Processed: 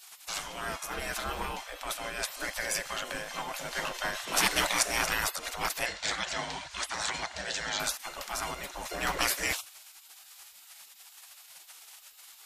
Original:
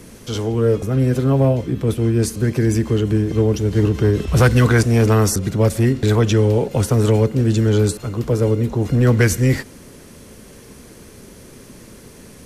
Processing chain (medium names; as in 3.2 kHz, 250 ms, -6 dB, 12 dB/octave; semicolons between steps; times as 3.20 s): 5.86–7.80 s: cabinet simulation 120–7600 Hz, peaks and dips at 180 Hz -4 dB, 1.2 kHz -6 dB, 1.8 kHz +4 dB, 2.6 kHz -4 dB, 4 kHz +4 dB; spectral gate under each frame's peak -25 dB weak; trim +2.5 dB